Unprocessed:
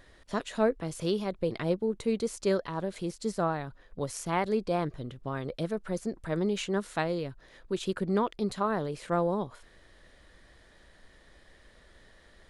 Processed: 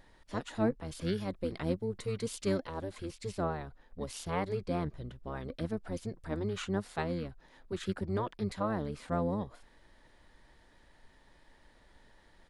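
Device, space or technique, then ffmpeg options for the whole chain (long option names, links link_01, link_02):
octave pedal: -filter_complex "[0:a]asplit=2[link_01][link_02];[link_02]asetrate=22050,aresample=44100,atempo=2,volume=-2dB[link_03];[link_01][link_03]amix=inputs=2:normalize=0,asettb=1/sr,asplit=3[link_04][link_05][link_06];[link_04]atrim=end=1.124[link_07];[link_05]atrim=start=1.12:end=2.92,asetpts=PTS-STARTPTS,afade=type=in:duration=0.004:curve=qsin,afade=type=out:start_time=1.796:duration=0.004:curve=qsin,highshelf=frequency=5200:gain=6.5[link_08];[link_06]atrim=start=2.916[link_09];[link_07][link_08]acrossfade=duration=0.004:curve1=hsin:curve2=qsin[link_10];[link_10][link_09]acrossfade=duration=0.004:curve1=qsin:curve2=hsin,volume=-6.5dB"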